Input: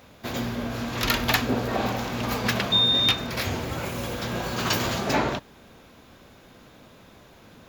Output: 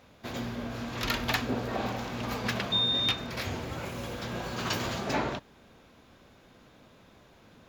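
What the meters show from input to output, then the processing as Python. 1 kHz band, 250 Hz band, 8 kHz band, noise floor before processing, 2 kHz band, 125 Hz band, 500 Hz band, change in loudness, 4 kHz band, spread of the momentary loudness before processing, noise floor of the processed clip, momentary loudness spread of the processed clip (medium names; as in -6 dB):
-6.0 dB, -6.0 dB, -8.0 dB, -52 dBFS, -6.0 dB, -6.0 dB, -6.0 dB, -6.5 dB, -6.5 dB, 11 LU, -58 dBFS, 11 LU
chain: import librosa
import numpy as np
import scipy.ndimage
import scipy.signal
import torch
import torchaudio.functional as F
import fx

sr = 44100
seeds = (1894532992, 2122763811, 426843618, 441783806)

y = fx.high_shelf(x, sr, hz=11000.0, db=-9.0)
y = F.gain(torch.from_numpy(y), -6.0).numpy()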